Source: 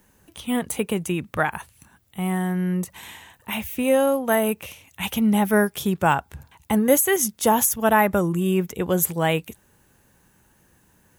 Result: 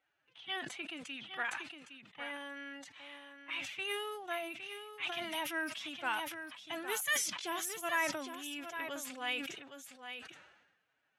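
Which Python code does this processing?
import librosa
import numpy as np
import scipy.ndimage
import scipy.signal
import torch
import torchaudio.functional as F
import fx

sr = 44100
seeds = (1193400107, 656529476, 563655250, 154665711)

p1 = fx.pitch_keep_formants(x, sr, semitones=7.5)
p2 = fx.env_lowpass(p1, sr, base_hz=2600.0, full_db=-15.0)
p3 = fx.bandpass_q(p2, sr, hz=3100.0, q=0.88)
p4 = p3 + fx.echo_single(p3, sr, ms=812, db=-9.0, dry=0)
p5 = fx.sustainer(p4, sr, db_per_s=52.0)
y = F.gain(torch.from_numpy(p5), -8.0).numpy()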